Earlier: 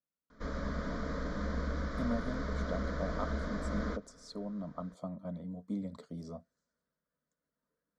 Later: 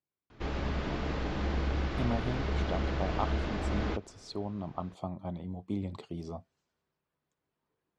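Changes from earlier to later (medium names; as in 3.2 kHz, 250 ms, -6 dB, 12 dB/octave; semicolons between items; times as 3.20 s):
speech: add peaking EQ 1.1 kHz +6.5 dB 0.24 oct; master: remove static phaser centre 540 Hz, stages 8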